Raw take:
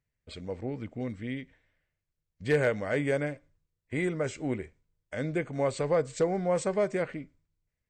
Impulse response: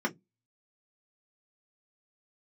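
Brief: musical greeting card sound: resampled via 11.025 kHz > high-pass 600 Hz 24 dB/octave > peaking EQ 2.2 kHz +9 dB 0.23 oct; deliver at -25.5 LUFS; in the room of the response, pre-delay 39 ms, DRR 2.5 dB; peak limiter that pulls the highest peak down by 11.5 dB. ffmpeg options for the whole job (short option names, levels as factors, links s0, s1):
-filter_complex "[0:a]alimiter=level_in=1.58:limit=0.0631:level=0:latency=1,volume=0.631,asplit=2[s0][s1];[1:a]atrim=start_sample=2205,adelay=39[s2];[s1][s2]afir=irnorm=-1:irlink=0,volume=0.299[s3];[s0][s3]amix=inputs=2:normalize=0,aresample=11025,aresample=44100,highpass=f=600:w=0.5412,highpass=f=600:w=1.3066,equalizer=f=2200:t=o:w=0.23:g=9,volume=5.31"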